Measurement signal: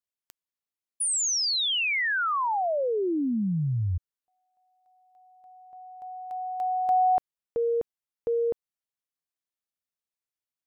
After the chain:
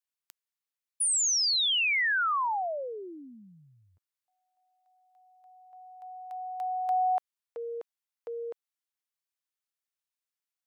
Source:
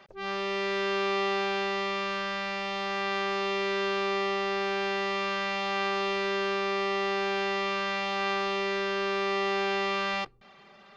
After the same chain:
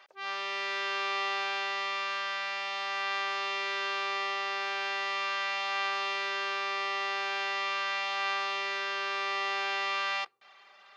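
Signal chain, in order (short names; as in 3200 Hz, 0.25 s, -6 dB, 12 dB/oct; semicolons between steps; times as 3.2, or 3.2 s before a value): HPF 860 Hz 12 dB/oct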